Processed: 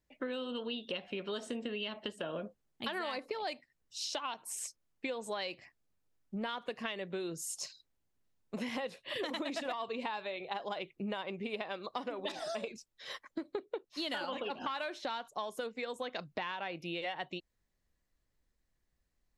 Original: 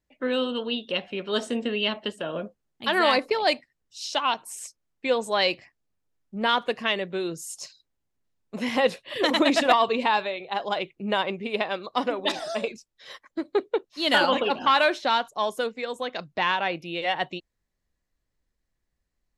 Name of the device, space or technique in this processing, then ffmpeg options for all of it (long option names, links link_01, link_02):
serial compression, leveller first: -af "acompressor=threshold=-26dB:ratio=2,acompressor=threshold=-35dB:ratio=5,volume=-1dB"